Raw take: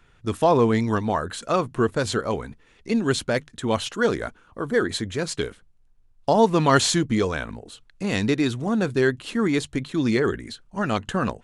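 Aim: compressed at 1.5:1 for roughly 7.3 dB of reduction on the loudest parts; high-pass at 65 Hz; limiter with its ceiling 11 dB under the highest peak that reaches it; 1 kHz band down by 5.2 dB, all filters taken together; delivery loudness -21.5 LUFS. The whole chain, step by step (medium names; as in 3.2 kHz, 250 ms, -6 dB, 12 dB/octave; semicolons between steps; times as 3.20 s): high-pass 65 Hz; peaking EQ 1 kHz -7 dB; compression 1.5:1, threshold -35 dBFS; trim +12.5 dB; peak limiter -11 dBFS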